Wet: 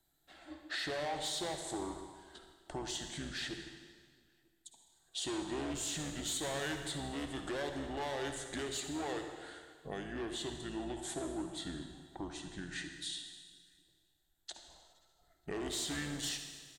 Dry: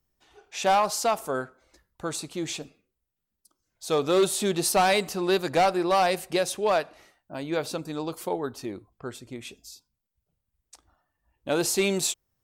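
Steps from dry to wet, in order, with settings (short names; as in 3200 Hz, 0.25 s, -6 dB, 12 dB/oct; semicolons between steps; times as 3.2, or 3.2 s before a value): octaver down 2 oct, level -2 dB; ripple EQ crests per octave 0.87, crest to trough 11 dB; soft clip -23.5 dBFS, distortion -8 dB; compressor 6:1, threshold -40 dBFS, peak gain reduction 13.5 dB; low shelf 230 Hz -10 dB; outdoor echo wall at 120 m, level -30 dB; Schroeder reverb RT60 1.2 s, DRR 5.5 dB; speed mistake 45 rpm record played at 33 rpm; gain +2.5 dB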